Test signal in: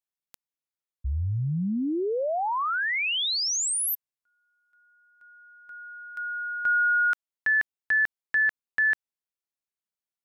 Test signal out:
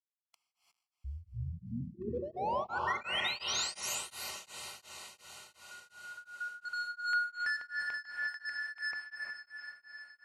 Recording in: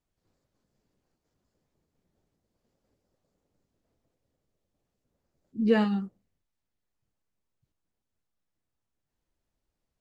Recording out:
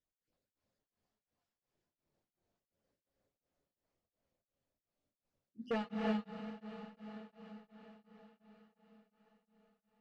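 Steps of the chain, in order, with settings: random spectral dropouts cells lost 33%; reverb removal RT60 0.53 s; low shelf 370 Hz -7.5 dB; notches 50/100/150/200/250/300/350/400 Hz; hard clip -26.5 dBFS; air absorption 63 m; diffused feedback echo 0.522 s, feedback 58%, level -9 dB; non-linear reverb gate 0.38 s rising, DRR -1 dB; beating tremolo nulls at 2.8 Hz; gain -4.5 dB

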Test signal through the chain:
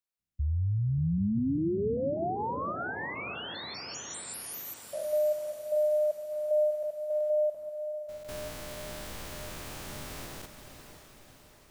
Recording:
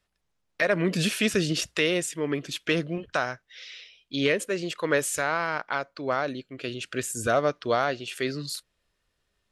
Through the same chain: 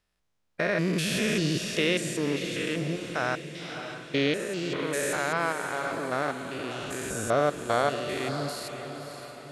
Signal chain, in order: stepped spectrum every 0.2 s; diffused feedback echo 0.572 s, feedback 53%, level -9 dB; gain +1.5 dB

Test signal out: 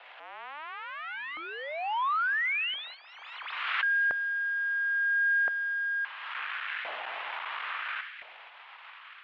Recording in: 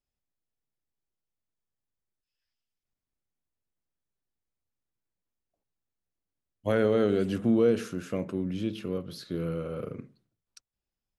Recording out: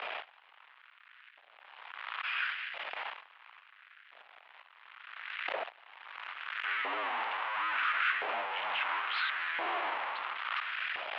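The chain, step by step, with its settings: infinite clipping; tilt shelf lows -9 dB; mistuned SSB -150 Hz 280–3200 Hz; in parallel at -12 dB: soft clip -37.5 dBFS; on the sum: air absorption 200 m; on a send: thin delay 0.223 s, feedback 67%, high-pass 1700 Hz, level -16 dB; on the sum: gate -45 dBFS, range -13 dB; LFO high-pass saw up 0.73 Hz 620–1700 Hz; backwards sustainer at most 33 dB/s

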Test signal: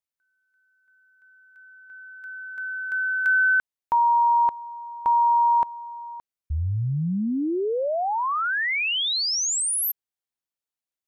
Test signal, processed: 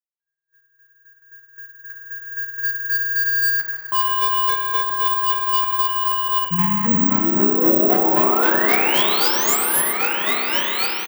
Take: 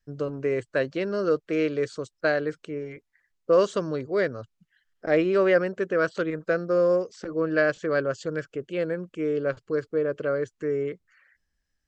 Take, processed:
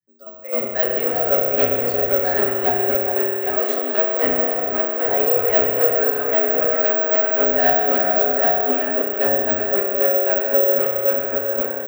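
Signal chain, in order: repeats that get brighter 0.407 s, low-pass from 750 Hz, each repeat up 1 oct, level 0 dB; AGC gain up to 13 dB; chopper 3.8 Hz, depth 65%, duty 25%; soft clip -16.5 dBFS; spectral noise reduction 13 dB; doubler 13 ms -2 dB; spring tank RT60 2.9 s, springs 31 ms, chirp 50 ms, DRR -0.5 dB; frequency shift +100 Hz; careless resampling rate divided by 2×, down none, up zero stuff; gain -3.5 dB

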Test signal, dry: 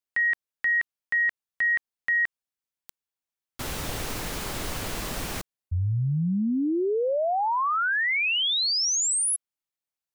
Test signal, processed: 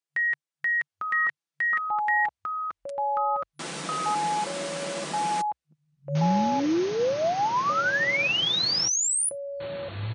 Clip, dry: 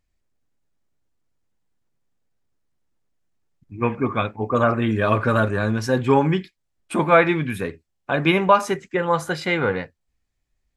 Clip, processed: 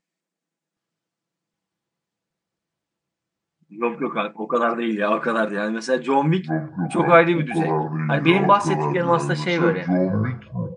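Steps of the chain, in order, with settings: FFT band-pass 140–10000 Hz; echoes that change speed 0.768 s, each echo -7 st, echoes 3; comb 6 ms, depth 39%; gain -1 dB

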